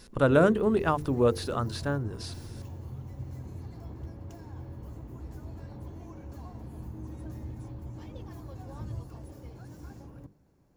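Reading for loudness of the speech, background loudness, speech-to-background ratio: −26.0 LKFS, −43.0 LKFS, 17.0 dB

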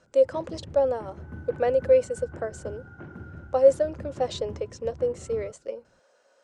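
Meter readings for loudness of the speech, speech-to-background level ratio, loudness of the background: −26.0 LKFS, 17.0 dB, −43.0 LKFS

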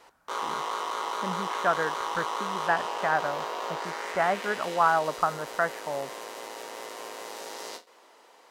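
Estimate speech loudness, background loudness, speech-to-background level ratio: −29.0 LKFS, −34.0 LKFS, 5.0 dB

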